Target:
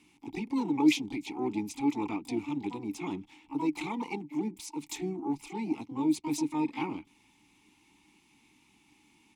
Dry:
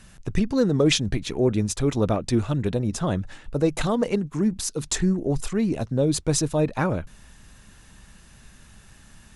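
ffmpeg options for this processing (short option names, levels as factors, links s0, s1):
-filter_complex "[0:a]asplit=3[s0][s1][s2];[s1]asetrate=37084,aresample=44100,atempo=1.18921,volume=0.158[s3];[s2]asetrate=88200,aresample=44100,atempo=0.5,volume=0.398[s4];[s0][s3][s4]amix=inputs=3:normalize=0,crystalizer=i=6.5:c=0,asplit=3[s5][s6][s7];[s5]bandpass=f=300:t=q:w=8,volume=1[s8];[s6]bandpass=f=870:t=q:w=8,volume=0.501[s9];[s7]bandpass=f=2240:t=q:w=8,volume=0.355[s10];[s8][s9][s10]amix=inputs=3:normalize=0"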